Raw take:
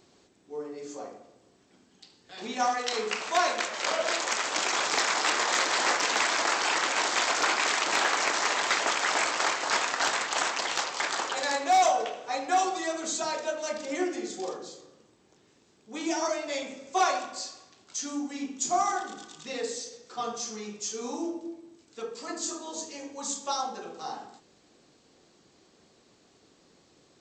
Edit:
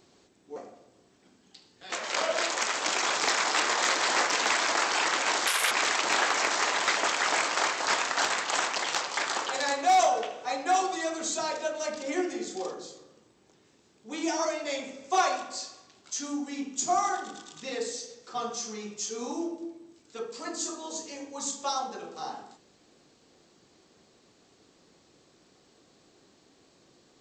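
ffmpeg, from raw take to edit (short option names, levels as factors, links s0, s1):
-filter_complex "[0:a]asplit=5[s0][s1][s2][s3][s4];[s0]atrim=end=0.562[s5];[s1]atrim=start=1.038:end=2.402[s6];[s2]atrim=start=3.618:end=7.174[s7];[s3]atrim=start=7.17:end=7.54,asetpts=PTS-STARTPTS,asetrate=67473,aresample=44100[s8];[s4]atrim=start=7.536[s9];[s5][s6]acrossfade=d=0.004:c1=hsin:c2=hsin[s10];[s10][s7]acrossfade=d=0.004:c1=hsin:c2=hsin[s11];[s11][s8]acrossfade=d=0.004:c1=hsin:c2=hsin[s12];[s12][s9]acrossfade=d=0.004:c1=hsin:c2=hsin"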